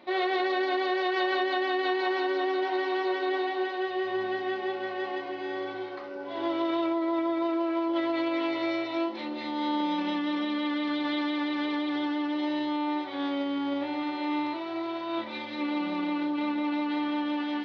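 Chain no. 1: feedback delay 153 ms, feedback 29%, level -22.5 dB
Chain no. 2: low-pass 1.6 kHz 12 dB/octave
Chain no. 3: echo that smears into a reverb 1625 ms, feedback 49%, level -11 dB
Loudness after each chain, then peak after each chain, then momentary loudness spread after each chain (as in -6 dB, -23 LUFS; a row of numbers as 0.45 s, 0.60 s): -29.5 LUFS, -30.0 LUFS, -29.0 LUFS; -16.0 dBFS, -17.0 dBFS, -16.5 dBFS; 6 LU, 6 LU, 6 LU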